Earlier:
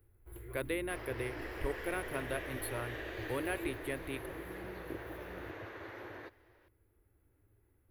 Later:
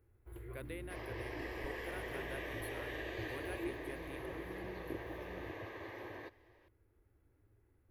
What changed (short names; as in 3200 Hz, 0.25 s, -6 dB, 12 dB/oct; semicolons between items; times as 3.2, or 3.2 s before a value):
speech -11.0 dB; first sound: add LPF 4000 Hz 6 dB/oct; second sound: add Butterworth band-stop 1400 Hz, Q 4.6